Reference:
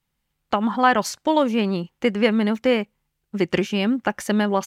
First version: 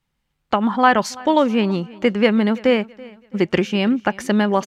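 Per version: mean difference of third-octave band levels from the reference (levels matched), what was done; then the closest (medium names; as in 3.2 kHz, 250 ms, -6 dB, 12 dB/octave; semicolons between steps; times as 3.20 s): 2.0 dB: treble shelf 8.6 kHz -11 dB; on a send: feedback delay 331 ms, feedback 38%, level -22 dB; on the sum: trim +3 dB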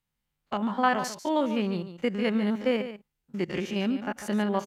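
4.0 dB: spectrogram pixelated in time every 50 ms; on a send: delay 144 ms -11.5 dB; on the sum: trim -6 dB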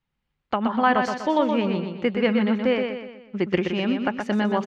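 6.0 dB: low-pass 3.5 kHz 12 dB/octave; on a send: feedback delay 123 ms, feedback 45%, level -5.5 dB; on the sum: trim -3 dB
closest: first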